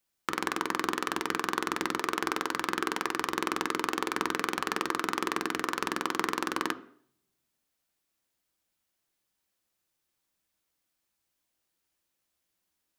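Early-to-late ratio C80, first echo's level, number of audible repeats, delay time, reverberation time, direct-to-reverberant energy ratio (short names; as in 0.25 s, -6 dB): 20.0 dB, none, none, none, 0.60 s, 9.0 dB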